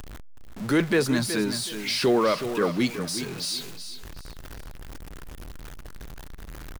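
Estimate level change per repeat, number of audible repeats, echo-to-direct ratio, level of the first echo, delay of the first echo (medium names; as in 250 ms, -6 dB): -11.5 dB, 3, -9.5 dB, -10.0 dB, 372 ms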